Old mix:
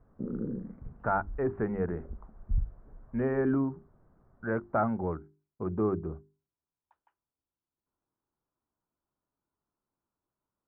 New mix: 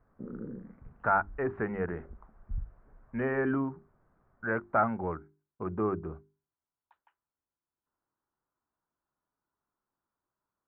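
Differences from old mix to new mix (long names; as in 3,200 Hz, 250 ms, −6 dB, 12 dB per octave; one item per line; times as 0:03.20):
speech +3.5 dB
master: add tilt shelving filter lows −7 dB, about 1,100 Hz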